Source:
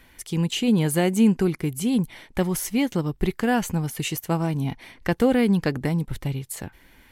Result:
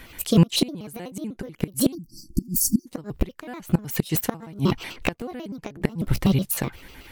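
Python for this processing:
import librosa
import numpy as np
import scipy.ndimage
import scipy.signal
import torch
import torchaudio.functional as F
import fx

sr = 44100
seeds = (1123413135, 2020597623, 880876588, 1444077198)

y = fx.pitch_trill(x, sr, semitones=5.5, every_ms=62)
y = fx.gate_flip(y, sr, shuts_db=-15.0, range_db=-24)
y = fx.spec_erase(y, sr, start_s=1.94, length_s=0.93, low_hz=360.0, high_hz=4400.0)
y = y * 10.0 ** (9.0 / 20.0)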